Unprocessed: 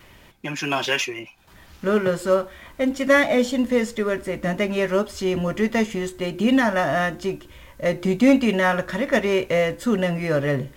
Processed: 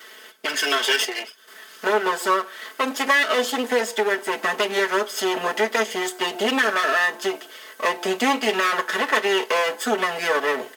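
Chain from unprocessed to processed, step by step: minimum comb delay 0.62 ms; HPF 390 Hz 24 dB/oct; comb 4.6 ms, depth 70%; compressor 2:1, threshold -29 dBFS, peak gain reduction 8.5 dB; gain +8 dB

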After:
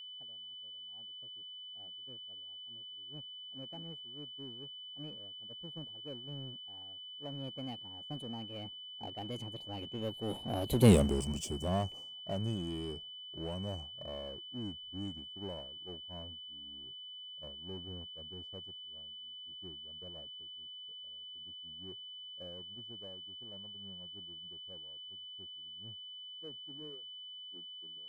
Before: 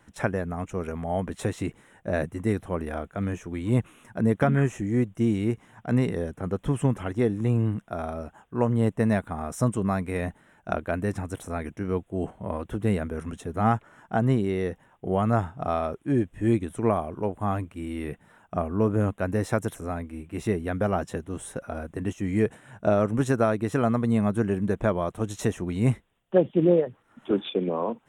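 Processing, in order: Doppler pass-by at 10.91, 54 m/s, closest 4.7 m; low-pass opened by the level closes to 790 Hz, open at -46.5 dBFS; expander -57 dBFS; Butterworth band-stop 1500 Hz, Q 0.85; high shelf 3400 Hz +12 dB; power-law curve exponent 0.7; whine 3000 Hz -47 dBFS; gain +1.5 dB

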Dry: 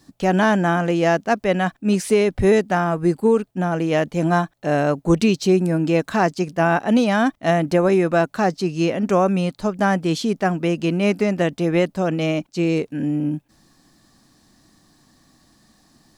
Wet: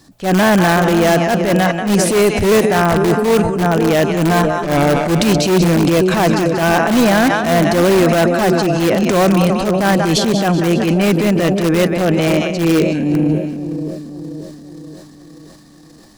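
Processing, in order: 4.44–5.05 minimum comb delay 6.7 ms; split-band echo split 610 Hz, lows 0.529 s, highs 0.187 s, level -9 dB; in parallel at -7 dB: wrapped overs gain 12.5 dB; on the sum: transient shaper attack -10 dB, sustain +7 dB; gain +4 dB

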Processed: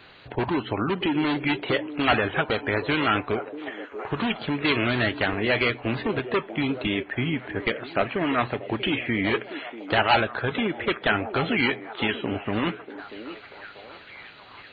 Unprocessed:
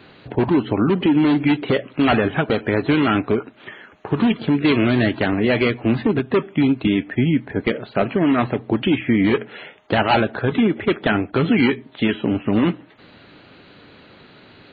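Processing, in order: bell 220 Hz -11 dB 2.5 oct; delay with a stepping band-pass 0.638 s, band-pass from 390 Hz, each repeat 0.7 oct, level -9 dB

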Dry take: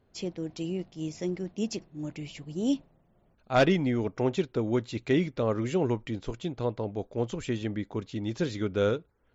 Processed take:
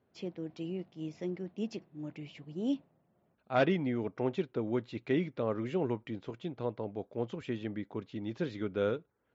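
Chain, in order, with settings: BPF 120–3300 Hz; gain -5 dB

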